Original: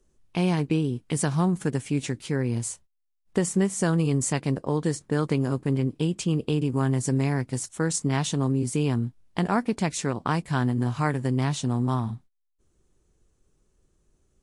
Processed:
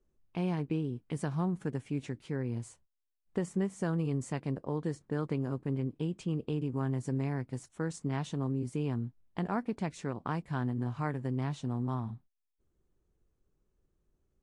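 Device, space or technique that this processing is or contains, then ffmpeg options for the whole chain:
through cloth: -af "highshelf=frequency=3800:gain=-14,volume=-8.5dB"

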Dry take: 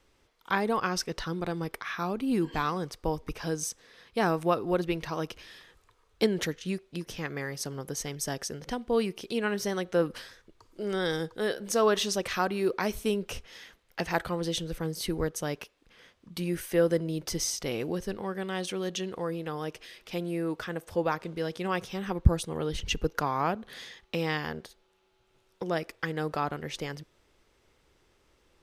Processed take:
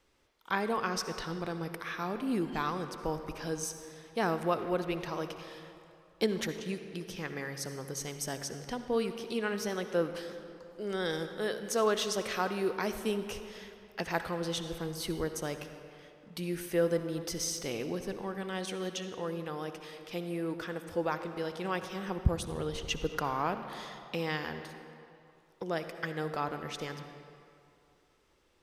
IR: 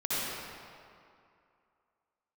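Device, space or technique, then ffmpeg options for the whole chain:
saturated reverb return: -filter_complex "[0:a]asplit=2[link_01][link_02];[1:a]atrim=start_sample=2205[link_03];[link_02][link_03]afir=irnorm=-1:irlink=0,asoftclip=type=tanh:threshold=-16dB,volume=-15dB[link_04];[link_01][link_04]amix=inputs=2:normalize=0,lowshelf=frequency=130:gain=-4,volume=-4.5dB"

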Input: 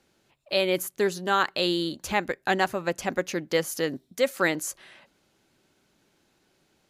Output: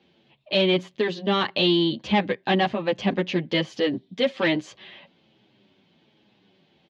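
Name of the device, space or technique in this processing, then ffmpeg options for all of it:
barber-pole flanger into a guitar amplifier: -filter_complex "[0:a]asplit=2[link_01][link_02];[link_02]adelay=8.4,afreqshift=-1.2[link_03];[link_01][link_03]amix=inputs=2:normalize=1,asoftclip=type=tanh:threshold=-22.5dB,highpass=100,equalizer=frequency=120:width_type=q:width=4:gain=4,equalizer=frequency=200:width_type=q:width=4:gain=8,equalizer=frequency=1400:width_type=q:width=4:gain=-10,equalizer=frequency=3200:width_type=q:width=4:gain=7,lowpass=frequency=4000:width=0.5412,lowpass=frequency=4000:width=1.3066,volume=8dB"

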